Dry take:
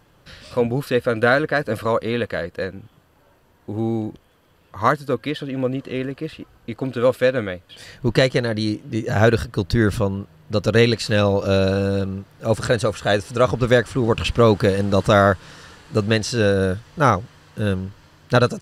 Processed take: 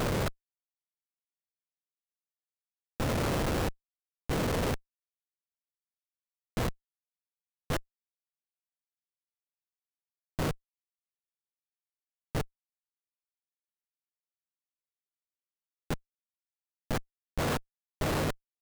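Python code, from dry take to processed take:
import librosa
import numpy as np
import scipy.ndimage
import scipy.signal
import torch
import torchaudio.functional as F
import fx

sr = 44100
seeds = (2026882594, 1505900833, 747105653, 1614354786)

y = fx.bin_compress(x, sr, power=0.4)
y = fx.gate_flip(y, sr, shuts_db=-11.0, range_db=-33)
y = fx.schmitt(y, sr, flips_db=-25.0)
y = F.gain(torch.from_numpy(y), 4.5).numpy()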